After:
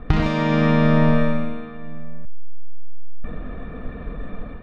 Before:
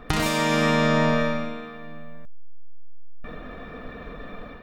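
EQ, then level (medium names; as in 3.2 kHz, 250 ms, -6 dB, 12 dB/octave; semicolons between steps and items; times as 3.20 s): distance through air 220 m; bass shelf 230 Hz +11.5 dB; 0.0 dB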